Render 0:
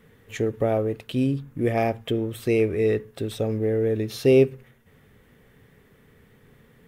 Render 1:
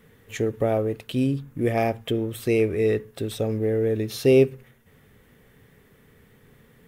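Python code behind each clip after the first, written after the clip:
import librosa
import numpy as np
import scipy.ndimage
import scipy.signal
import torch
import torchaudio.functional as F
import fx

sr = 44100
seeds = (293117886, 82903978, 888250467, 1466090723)

y = fx.high_shelf(x, sr, hz=5800.0, db=4.5)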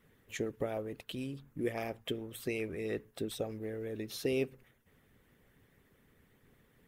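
y = fx.hpss(x, sr, part='harmonic', gain_db=-12)
y = y * librosa.db_to_amplitude(-6.5)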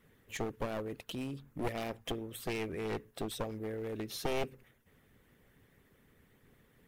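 y = np.minimum(x, 2.0 * 10.0 ** (-35.5 / 20.0) - x)
y = y * librosa.db_to_amplitude(1.0)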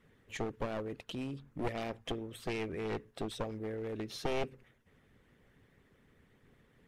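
y = fx.air_absorb(x, sr, metres=51.0)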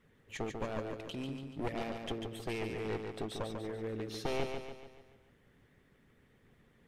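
y = fx.echo_feedback(x, sr, ms=144, feedback_pct=49, wet_db=-5.5)
y = y * librosa.db_to_amplitude(-1.5)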